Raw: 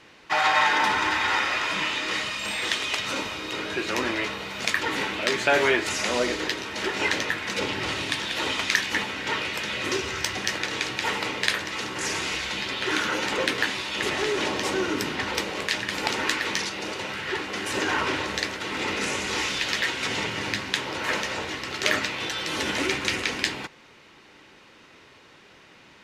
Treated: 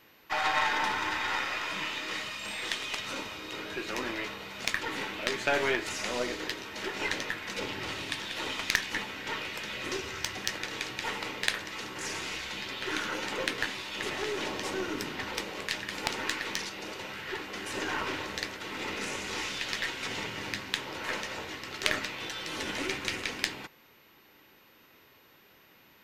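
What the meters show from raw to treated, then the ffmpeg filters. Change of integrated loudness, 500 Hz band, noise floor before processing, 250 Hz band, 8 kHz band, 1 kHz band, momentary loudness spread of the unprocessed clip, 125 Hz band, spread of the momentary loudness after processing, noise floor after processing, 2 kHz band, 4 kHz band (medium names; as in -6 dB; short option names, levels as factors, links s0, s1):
-7.5 dB, -7.5 dB, -52 dBFS, -7.5 dB, -7.0 dB, -7.5 dB, 6 LU, -7.5 dB, 7 LU, -60 dBFS, -7.5 dB, -7.0 dB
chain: -af "aeval=exprs='0.708*(cos(1*acos(clip(val(0)/0.708,-1,1)))-cos(1*PI/2))+0.158*(cos(3*acos(clip(val(0)/0.708,-1,1)))-cos(3*PI/2))+0.00562*(cos(4*acos(clip(val(0)/0.708,-1,1)))-cos(4*PI/2))+0.01*(cos(5*acos(clip(val(0)/0.708,-1,1)))-cos(5*PI/2))+0.01*(cos(8*acos(clip(val(0)/0.708,-1,1)))-cos(8*PI/2))':c=same,aeval=exprs='val(0)+0.000562*sin(2*PI*13000*n/s)':c=same"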